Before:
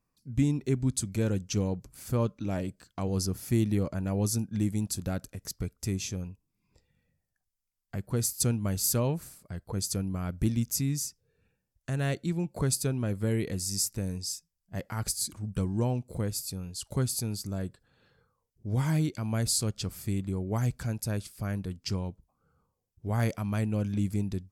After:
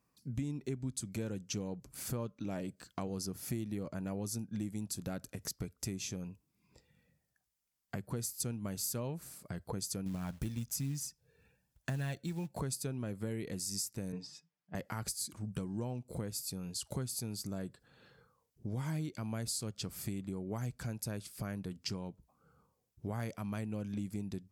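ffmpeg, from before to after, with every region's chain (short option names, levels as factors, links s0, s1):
-filter_complex "[0:a]asettb=1/sr,asplit=3[s0][s1][s2];[s0]atrim=end=10.064[s3];[s1]atrim=start=10.06:end=12.6,asetpts=PTS-STARTPTS,afade=t=in:d=0.004:c=qsin,afade=t=out:st=2.536:d=0.004:c=qsin,aecho=1:1:1.2:0.32,atrim=end_sample=112014,aphaser=in_gain=1:out_gain=1:delay=2.3:decay=0.36:speed=1.1:type=sinusoidal,acrusher=bits=6:mode=log:mix=0:aa=0.000001[s4];[s2]atrim=start=12.596[s5];[s3][s4]acrossfade=d=0.004:c1=hsin:c2=qsin[s6];[s6][s5]acrossfade=d=0.004:c1=qsin:c2=hsin,asettb=1/sr,asplit=3[s7][s8][s9];[s7]atrim=end=14.124[s10];[s8]atrim=start=14.12:end=14.75,asetpts=PTS-STARTPTS,afade=t=in:d=0.004:c=qsin,afade=t=out:st=0.626:d=0.004:c=qsin,deesser=0.8,highpass=160,lowpass=2800,aecho=1:1:6.7:0.72,atrim=end_sample=27783[s11];[s9]atrim=start=14.746[s12];[s10][s11]acrossfade=d=0.004:c1=hsin:c2=qsin[s13];[s13][s12]acrossfade=d=0.004:c1=qsin:c2=hsin,highpass=63,equalizer=f=90:w=4.6:g=-10,acompressor=threshold=0.00891:ratio=4,volume=1.5"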